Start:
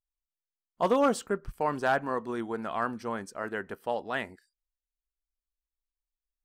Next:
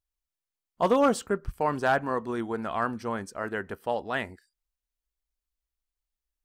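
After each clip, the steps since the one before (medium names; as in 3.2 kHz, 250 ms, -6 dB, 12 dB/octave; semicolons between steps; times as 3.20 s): peaking EQ 72 Hz +8.5 dB 1.2 oct; trim +2 dB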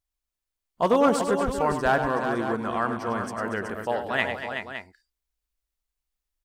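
time-frequency box 4.18–4.55 s, 610–7300 Hz +9 dB; on a send: multi-tap echo 100/236/375/563 ms -9/-11.5/-7.5/-11 dB; on the sum: trim +1.5 dB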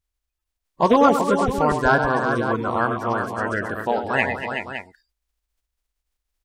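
coarse spectral quantiser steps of 30 dB; treble shelf 10 kHz -4 dB; trim +5.5 dB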